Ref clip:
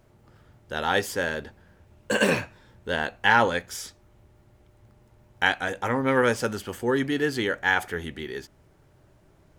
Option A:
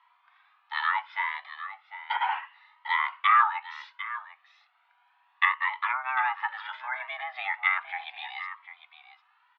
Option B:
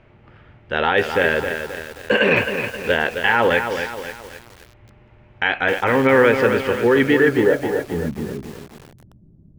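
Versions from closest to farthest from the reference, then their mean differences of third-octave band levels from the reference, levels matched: B, A; 7.5 dB, 18.0 dB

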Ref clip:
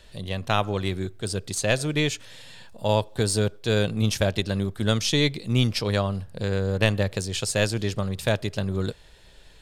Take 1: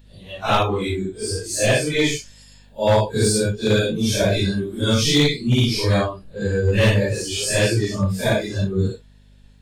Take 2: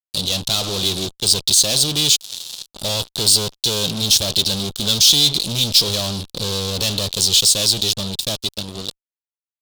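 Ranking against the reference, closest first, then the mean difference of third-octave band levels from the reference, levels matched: 1, 2; 6.5 dB, 9.5 dB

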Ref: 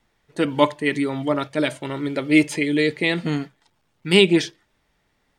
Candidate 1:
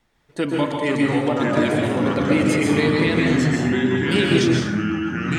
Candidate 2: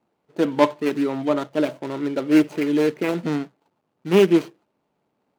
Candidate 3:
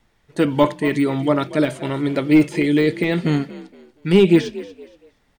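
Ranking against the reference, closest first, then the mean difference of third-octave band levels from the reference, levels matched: 3, 2, 1; 2.5 dB, 4.5 dB, 8.5 dB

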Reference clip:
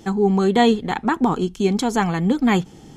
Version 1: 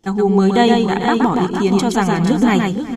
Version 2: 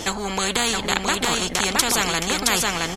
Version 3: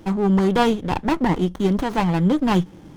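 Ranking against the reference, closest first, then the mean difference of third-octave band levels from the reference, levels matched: 3, 1, 2; 4.0 dB, 6.0 dB, 15.0 dB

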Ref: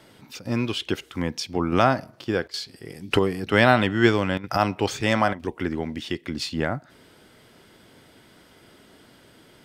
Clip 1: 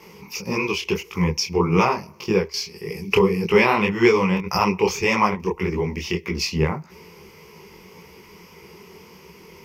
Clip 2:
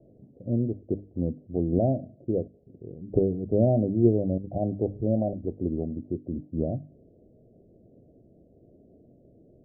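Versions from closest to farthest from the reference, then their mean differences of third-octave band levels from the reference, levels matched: 1, 2; 5.0 dB, 14.0 dB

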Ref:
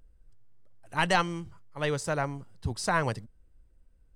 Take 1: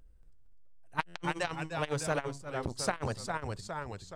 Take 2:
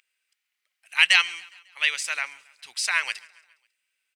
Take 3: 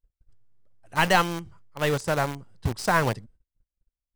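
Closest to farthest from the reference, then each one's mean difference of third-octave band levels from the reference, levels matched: 3, 1, 2; 4.5 dB, 10.0 dB, 15.0 dB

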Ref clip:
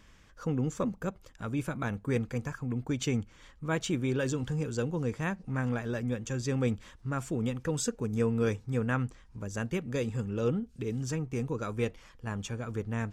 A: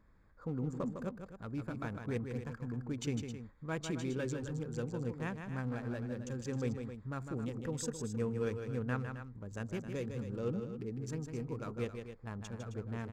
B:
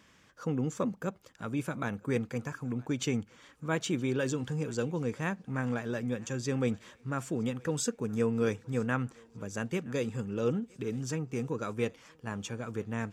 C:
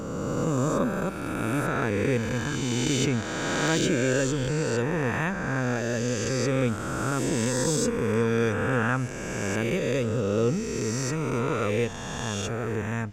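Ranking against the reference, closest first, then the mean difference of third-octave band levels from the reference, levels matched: B, A, C; 1.5 dB, 5.0 dB, 10.0 dB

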